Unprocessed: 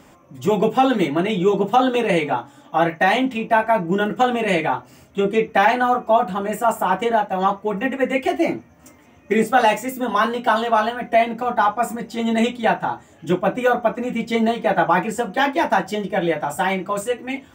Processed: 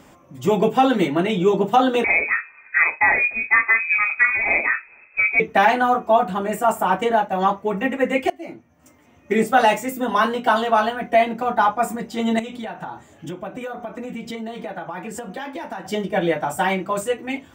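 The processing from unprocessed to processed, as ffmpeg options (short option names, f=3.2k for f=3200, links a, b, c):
-filter_complex "[0:a]asettb=1/sr,asplit=3[a][b][c];[a]atrim=end=2.044[d];[b]atrim=start=2.04:end=5.4,asetpts=PTS-STARTPTS,afade=t=in:d=0.004:c=qsin,afade=t=out:st=3.356:d=0.004:c=qsin,lowpass=f=2.3k:t=q:w=0.5098,lowpass=f=2.3k:t=q:w=0.6013,lowpass=f=2.3k:t=q:w=0.9,lowpass=f=2.3k:t=q:w=2.563,afreqshift=-2700[e];[c]atrim=start=5.396[f];[d][e]acrossfade=d=0.004:c1=hsin:c2=qsin[g];[g][f]acrossfade=d=0.004:c1=qsin:c2=hsin,asettb=1/sr,asplit=3[h][i][j];[h]atrim=end=12.394[k];[i]atrim=start=12.39:end=15.85,asetpts=PTS-STARTPTS,afade=t=in:d=0.004:c=qsin,afade=t=out:st=3.456:d=0.004:c=qsin,acompressor=threshold=-27dB:ratio=10:attack=3.2:release=140:knee=1:detection=peak[l];[j]atrim=start=15.846[m];[k][l]acrossfade=d=0.004:c1=hsin:c2=qsin[n];[n][m]acrossfade=d=0.004:c1=qsin:c2=hsin,asplit=2[o][p];[o]atrim=end=8.3,asetpts=PTS-STARTPTS,afade=t=out:st=8.296:d=0.004:c=hsin:silence=0.0707946[q];[p]atrim=start=8.3,asetpts=PTS-STARTPTS,afade=t=in:d=1.23:silence=0.0707946[r];[q][r]concat=n=2:v=0:a=1"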